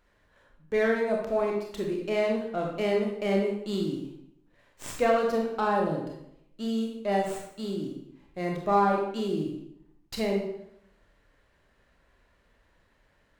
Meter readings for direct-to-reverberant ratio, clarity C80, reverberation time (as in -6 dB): -0.5 dB, 6.0 dB, 0.75 s